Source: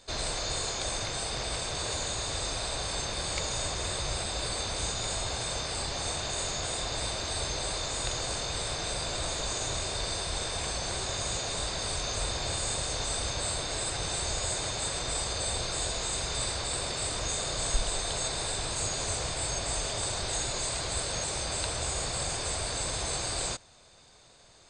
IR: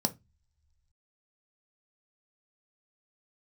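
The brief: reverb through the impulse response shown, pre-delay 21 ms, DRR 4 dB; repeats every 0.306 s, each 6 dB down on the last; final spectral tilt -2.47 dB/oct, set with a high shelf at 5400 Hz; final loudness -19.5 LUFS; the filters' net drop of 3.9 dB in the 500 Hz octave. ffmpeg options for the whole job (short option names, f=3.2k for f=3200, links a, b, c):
-filter_complex "[0:a]equalizer=f=500:t=o:g=-5,highshelf=f=5.4k:g=-3.5,aecho=1:1:306|612|918|1224|1530|1836:0.501|0.251|0.125|0.0626|0.0313|0.0157,asplit=2[a][b];[1:a]atrim=start_sample=2205,adelay=21[c];[b][c]afir=irnorm=-1:irlink=0,volume=-9.5dB[d];[a][d]amix=inputs=2:normalize=0,volume=10dB"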